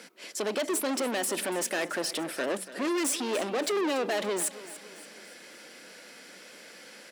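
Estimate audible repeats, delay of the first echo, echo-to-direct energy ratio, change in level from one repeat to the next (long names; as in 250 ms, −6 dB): 3, 286 ms, −14.5 dB, −7.0 dB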